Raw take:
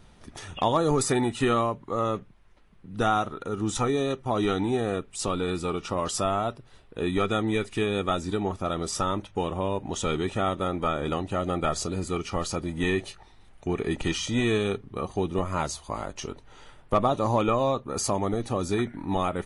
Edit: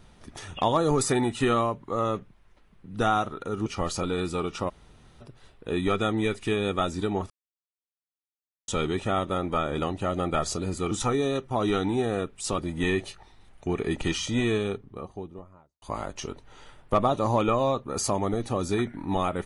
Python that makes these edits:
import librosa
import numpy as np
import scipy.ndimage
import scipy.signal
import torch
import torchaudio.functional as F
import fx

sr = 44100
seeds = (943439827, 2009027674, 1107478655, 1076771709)

y = fx.studio_fade_out(x, sr, start_s=14.19, length_s=1.63)
y = fx.edit(y, sr, fx.swap(start_s=3.66, length_s=1.67, other_s=12.21, other_length_s=0.37),
    fx.room_tone_fill(start_s=5.99, length_s=0.52, crossfade_s=0.02),
    fx.silence(start_s=8.6, length_s=1.38), tone=tone)